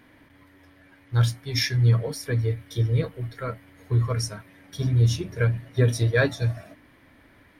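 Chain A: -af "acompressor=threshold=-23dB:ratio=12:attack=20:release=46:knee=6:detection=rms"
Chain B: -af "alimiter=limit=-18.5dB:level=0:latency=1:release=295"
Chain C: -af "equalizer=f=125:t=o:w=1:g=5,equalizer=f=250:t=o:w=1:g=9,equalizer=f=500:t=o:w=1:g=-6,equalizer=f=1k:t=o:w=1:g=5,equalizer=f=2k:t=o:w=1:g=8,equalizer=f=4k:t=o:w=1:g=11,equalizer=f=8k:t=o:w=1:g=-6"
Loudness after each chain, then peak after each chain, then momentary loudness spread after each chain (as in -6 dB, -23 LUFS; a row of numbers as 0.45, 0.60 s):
-29.0, -29.5, -18.5 LUFS; -14.5, -18.5, -2.0 dBFS; 8, 9, 14 LU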